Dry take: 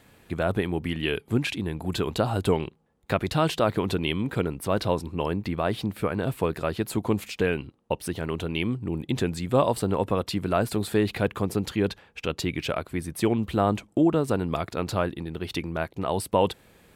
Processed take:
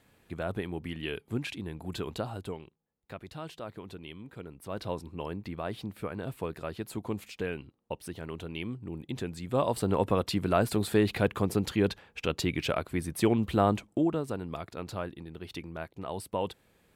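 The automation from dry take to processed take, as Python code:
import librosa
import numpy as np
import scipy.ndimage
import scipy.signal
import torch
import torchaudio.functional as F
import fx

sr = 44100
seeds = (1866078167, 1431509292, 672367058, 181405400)

y = fx.gain(x, sr, db=fx.line((2.14, -8.5), (2.64, -18.0), (4.38, -18.0), (4.91, -9.5), (9.34, -9.5), (9.96, -1.5), (13.65, -1.5), (14.35, -10.0)))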